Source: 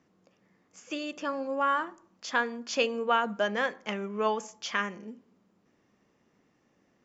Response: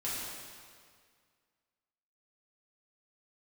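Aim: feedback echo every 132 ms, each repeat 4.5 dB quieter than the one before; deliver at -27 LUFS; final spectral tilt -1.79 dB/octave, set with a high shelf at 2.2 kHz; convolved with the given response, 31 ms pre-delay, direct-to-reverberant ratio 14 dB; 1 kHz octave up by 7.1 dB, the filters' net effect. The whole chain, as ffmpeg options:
-filter_complex "[0:a]equalizer=f=1000:t=o:g=6.5,highshelf=f=2200:g=9,aecho=1:1:132|264|396|528|660|792|924|1056|1188:0.596|0.357|0.214|0.129|0.0772|0.0463|0.0278|0.0167|0.01,asplit=2[s0][s1];[1:a]atrim=start_sample=2205,adelay=31[s2];[s1][s2]afir=irnorm=-1:irlink=0,volume=0.119[s3];[s0][s3]amix=inputs=2:normalize=0,volume=0.668"

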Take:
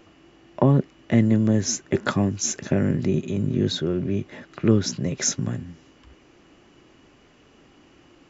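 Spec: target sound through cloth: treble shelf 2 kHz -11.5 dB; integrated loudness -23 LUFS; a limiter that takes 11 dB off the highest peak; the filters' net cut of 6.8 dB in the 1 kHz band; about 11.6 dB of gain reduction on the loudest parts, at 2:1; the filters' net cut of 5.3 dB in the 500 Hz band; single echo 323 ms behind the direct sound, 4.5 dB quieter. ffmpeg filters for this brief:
-af "equalizer=f=500:t=o:g=-6,equalizer=f=1000:t=o:g=-4,acompressor=threshold=0.0158:ratio=2,alimiter=level_in=1.5:limit=0.0631:level=0:latency=1,volume=0.668,highshelf=f=2000:g=-11.5,aecho=1:1:323:0.596,volume=5.31"

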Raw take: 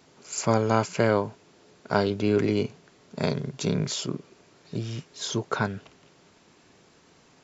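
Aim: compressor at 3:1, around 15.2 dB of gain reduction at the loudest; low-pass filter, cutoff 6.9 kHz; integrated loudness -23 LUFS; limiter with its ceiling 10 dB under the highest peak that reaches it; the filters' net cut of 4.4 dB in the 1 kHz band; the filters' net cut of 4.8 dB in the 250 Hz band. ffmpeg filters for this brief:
-af "lowpass=6900,equalizer=f=250:t=o:g=-6.5,equalizer=f=1000:t=o:g=-5.5,acompressor=threshold=0.00891:ratio=3,volume=11.9,alimiter=limit=0.299:level=0:latency=1"

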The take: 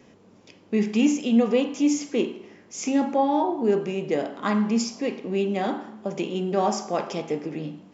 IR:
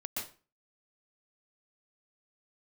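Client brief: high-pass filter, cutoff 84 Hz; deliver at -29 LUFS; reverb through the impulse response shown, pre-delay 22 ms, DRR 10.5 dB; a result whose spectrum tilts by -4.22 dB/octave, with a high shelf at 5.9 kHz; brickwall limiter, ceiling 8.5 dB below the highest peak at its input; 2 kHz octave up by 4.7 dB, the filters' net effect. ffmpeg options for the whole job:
-filter_complex "[0:a]highpass=84,equalizer=f=2000:t=o:g=5,highshelf=f=5900:g=8,alimiter=limit=0.141:level=0:latency=1,asplit=2[s0][s1];[1:a]atrim=start_sample=2205,adelay=22[s2];[s1][s2]afir=irnorm=-1:irlink=0,volume=0.251[s3];[s0][s3]amix=inputs=2:normalize=0,volume=0.794"

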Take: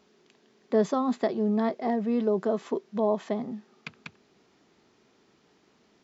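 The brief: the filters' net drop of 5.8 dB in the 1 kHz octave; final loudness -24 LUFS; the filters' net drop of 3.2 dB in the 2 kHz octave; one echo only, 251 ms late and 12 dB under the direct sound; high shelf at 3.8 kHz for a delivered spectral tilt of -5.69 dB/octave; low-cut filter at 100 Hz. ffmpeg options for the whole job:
-af "highpass=100,equalizer=f=1000:t=o:g=-8.5,equalizer=f=2000:t=o:g=-3.5,highshelf=f=3800:g=8.5,aecho=1:1:251:0.251,volume=1.78"

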